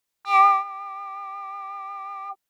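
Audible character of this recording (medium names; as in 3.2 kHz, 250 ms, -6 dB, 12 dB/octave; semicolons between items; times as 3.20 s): noise floor -81 dBFS; spectral tilt +1.0 dB/octave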